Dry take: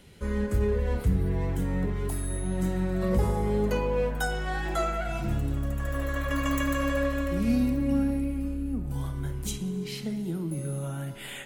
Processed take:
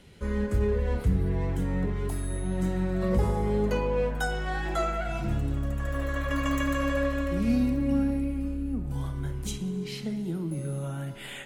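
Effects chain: treble shelf 11 kHz -10 dB

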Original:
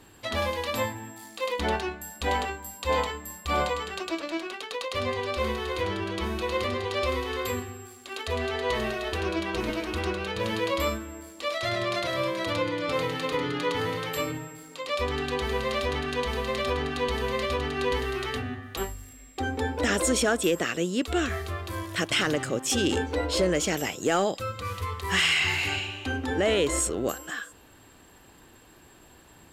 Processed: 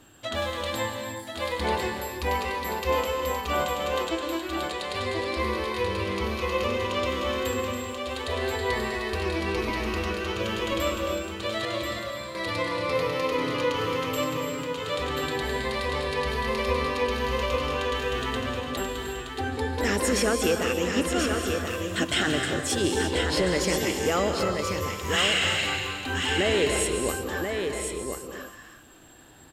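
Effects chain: drifting ripple filter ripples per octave 0.86, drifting +0.28 Hz, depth 6 dB; 11.65–12.35 s: expander -21 dBFS; delay 1034 ms -5.5 dB; reverberation, pre-delay 135 ms, DRR 4.5 dB; trim -1.5 dB

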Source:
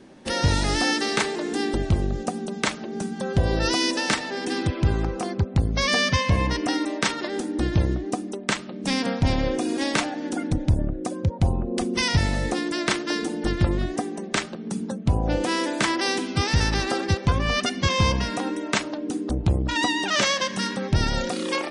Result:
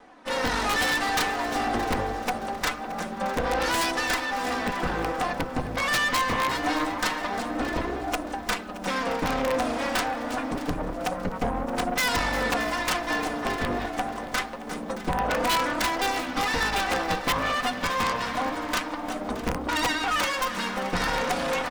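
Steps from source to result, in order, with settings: comb filter that takes the minimum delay 4 ms; peaking EQ 1.1 kHz +14.5 dB 2.8 oct; de-hum 63.59 Hz, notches 7; level rider gain up to 9 dB; flange 0.25 Hz, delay 2.4 ms, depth 6.8 ms, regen +42%; integer overflow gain 8.5 dB; valve stage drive 18 dB, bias 0.55; feedback delay 622 ms, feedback 37%, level -16 dB; bit-crushed delay 351 ms, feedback 55%, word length 8-bit, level -13 dB; trim -2.5 dB

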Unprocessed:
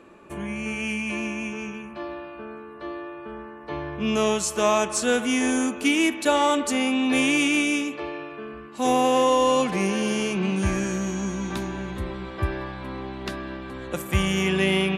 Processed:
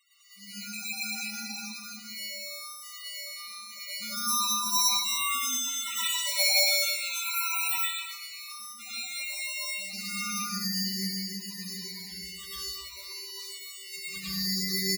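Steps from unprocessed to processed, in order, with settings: brick-wall FIR band-stop 2.9–8.7 kHz; bouncing-ball echo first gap 110 ms, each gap 0.8×, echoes 5; sample-and-hold 27×; amplifier tone stack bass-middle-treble 5-5-5; hum notches 60/120/180 Hz; comb 5.1 ms, depth 78%; 7.20–7.69 s: spectral replace 1.5–8.9 kHz before; tilt EQ +3 dB/octave; 7.85–9.93 s: compression 2.5:1, threshold -32 dBFS, peak gain reduction 12 dB; loudest bins only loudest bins 16; reverberation RT60 0.65 s, pre-delay 98 ms, DRR -9 dB; trim -2.5 dB

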